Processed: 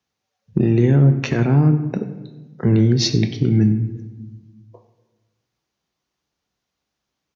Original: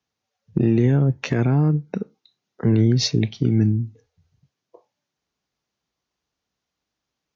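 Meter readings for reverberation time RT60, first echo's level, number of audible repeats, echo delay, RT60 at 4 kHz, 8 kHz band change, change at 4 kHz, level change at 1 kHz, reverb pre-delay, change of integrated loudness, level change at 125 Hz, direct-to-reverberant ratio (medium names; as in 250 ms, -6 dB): 1.1 s, -19.0 dB, 1, 95 ms, 0.70 s, no reading, +2.5 dB, +2.5 dB, 5 ms, +3.0 dB, +3.5 dB, 7.5 dB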